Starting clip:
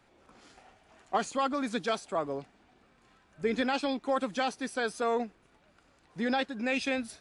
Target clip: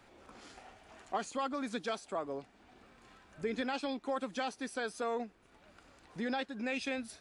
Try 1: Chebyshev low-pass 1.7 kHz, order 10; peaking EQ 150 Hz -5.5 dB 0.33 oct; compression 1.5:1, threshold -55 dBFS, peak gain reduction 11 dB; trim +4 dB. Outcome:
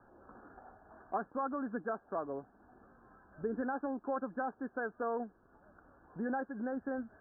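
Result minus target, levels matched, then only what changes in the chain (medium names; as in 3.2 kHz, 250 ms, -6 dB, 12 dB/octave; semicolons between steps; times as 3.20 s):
2 kHz band -2.5 dB
remove: Chebyshev low-pass 1.7 kHz, order 10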